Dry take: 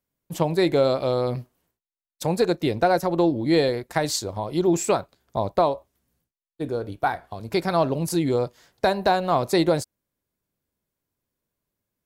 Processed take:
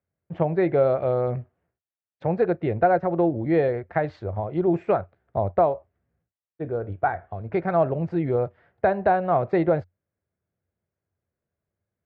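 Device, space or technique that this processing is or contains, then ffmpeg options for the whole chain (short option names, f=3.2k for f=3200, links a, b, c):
bass cabinet: -af "highpass=62,equalizer=f=90:t=q:w=4:g=10,equalizer=f=270:t=q:w=4:g=-8,equalizer=f=680:t=q:w=4:g=3,equalizer=f=1k:t=q:w=4:g=-7,lowpass=f=2k:w=0.5412,lowpass=f=2k:w=1.3066"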